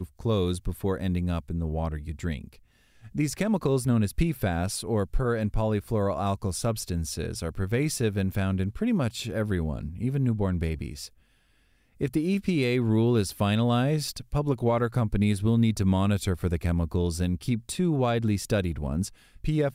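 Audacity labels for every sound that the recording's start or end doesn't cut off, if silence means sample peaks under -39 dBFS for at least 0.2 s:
3.050000	11.070000	sound
12.010000	19.080000	sound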